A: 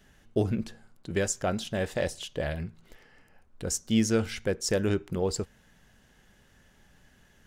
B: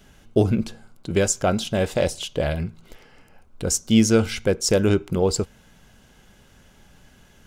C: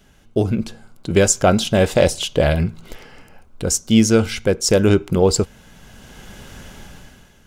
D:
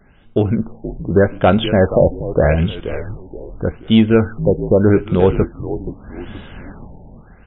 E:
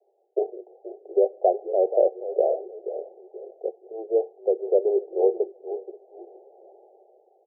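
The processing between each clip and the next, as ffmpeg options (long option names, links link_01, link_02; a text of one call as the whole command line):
ffmpeg -i in.wav -af "bandreject=frequency=1800:width=5.8,volume=8dB" out.wav
ffmpeg -i in.wav -af "dynaudnorm=framelen=120:gausssize=11:maxgain=16dB,volume=-1dB" out.wav
ffmpeg -i in.wav -filter_complex "[0:a]asoftclip=type=tanh:threshold=-3dB,asplit=5[link_01][link_02][link_03][link_04][link_05];[link_02]adelay=476,afreqshift=-63,volume=-11dB[link_06];[link_03]adelay=952,afreqshift=-126,volume=-18.5dB[link_07];[link_04]adelay=1428,afreqshift=-189,volume=-26.1dB[link_08];[link_05]adelay=1904,afreqshift=-252,volume=-33.6dB[link_09];[link_01][link_06][link_07][link_08][link_09]amix=inputs=5:normalize=0,afftfilt=real='re*lt(b*sr/1024,930*pow(3900/930,0.5+0.5*sin(2*PI*0.82*pts/sr)))':imag='im*lt(b*sr/1024,930*pow(3900/930,0.5+0.5*sin(2*PI*0.82*pts/sr)))':win_size=1024:overlap=0.75,volume=3dB" out.wav
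ffmpeg -i in.wav -af "asoftclip=type=hard:threshold=-3.5dB,asuperpass=centerf=540:order=20:qfactor=1.2,aecho=1:1:531|1062:0.0794|0.0191,volume=-6dB" out.wav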